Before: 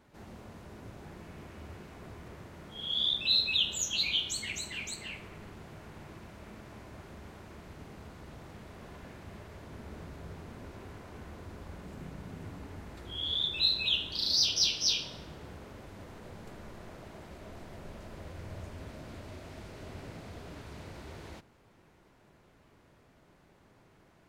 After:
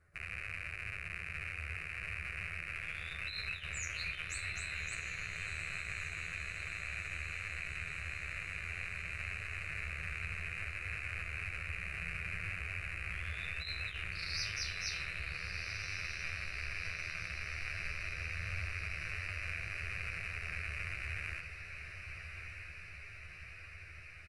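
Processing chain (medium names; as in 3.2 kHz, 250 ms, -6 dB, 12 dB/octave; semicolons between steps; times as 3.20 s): rattle on loud lows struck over -54 dBFS, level -21 dBFS; steep low-pass 11 kHz 72 dB/octave; peaking EQ 6.2 kHz -12 dB 1.1 oct; doubling 12 ms -5 dB; echo that smears into a reverb 1284 ms, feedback 68%, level -8 dB; compressor with a negative ratio -30 dBFS, ratio -0.5; peaking EQ 480 Hz -14 dB 2.4 oct; static phaser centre 910 Hz, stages 6; endings held to a fixed fall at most 130 dB/s; trim +1.5 dB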